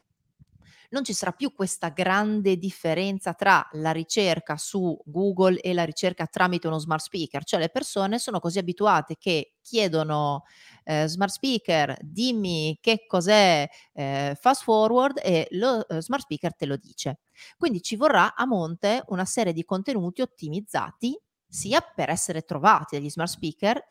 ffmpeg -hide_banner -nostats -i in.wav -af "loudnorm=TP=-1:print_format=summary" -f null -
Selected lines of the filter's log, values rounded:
Input Integrated:    -24.9 LUFS
Input True Peak:      -5.0 dBTP
Input LRA:             4.7 LU
Input Threshold:     -35.1 LUFS